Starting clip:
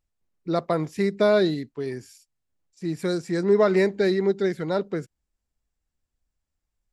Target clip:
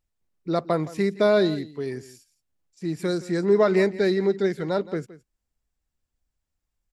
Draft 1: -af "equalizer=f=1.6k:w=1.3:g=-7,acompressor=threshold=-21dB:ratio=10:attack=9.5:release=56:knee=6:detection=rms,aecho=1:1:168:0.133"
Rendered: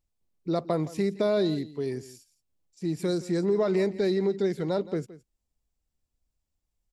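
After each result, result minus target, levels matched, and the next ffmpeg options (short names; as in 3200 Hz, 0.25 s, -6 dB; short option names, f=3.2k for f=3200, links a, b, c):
compressor: peak gain reduction +7 dB; 2000 Hz band -5.5 dB
-af "equalizer=f=1.6k:w=1.3:g=-7,aecho=1:1:168:0.133"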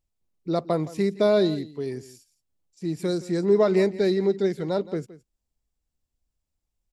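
2000 Hz band -5.5 dB
-af "aecho=1:1:168:0.133"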